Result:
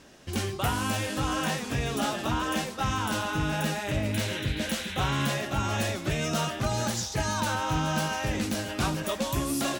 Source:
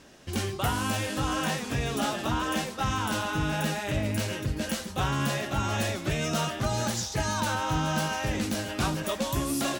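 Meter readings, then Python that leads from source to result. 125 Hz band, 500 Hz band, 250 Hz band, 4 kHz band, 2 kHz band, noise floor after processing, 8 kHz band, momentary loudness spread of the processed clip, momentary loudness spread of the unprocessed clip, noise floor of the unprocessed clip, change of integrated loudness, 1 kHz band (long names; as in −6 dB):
0.0 dB, 0.0 dB, 0.0 dB, +0.5 dB, +0.5 dB, −38 dBFS, 0.0 dB, 2 LU, 2 LU, −39 dBFS, 0.0 dB, 0.0 dB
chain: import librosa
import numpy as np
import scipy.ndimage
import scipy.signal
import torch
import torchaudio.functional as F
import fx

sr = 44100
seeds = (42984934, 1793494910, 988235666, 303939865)

y = fx.rattle_buzz(x, sr, strikes_db=-27.0, level_db=-32.0)
y = fx.spec_paint(y, sr, seeds[0], shape='noise', start_s=4.13, length_s=1.21, low_hz=1400.0, high_hz=4100.0, level_db=-39.0)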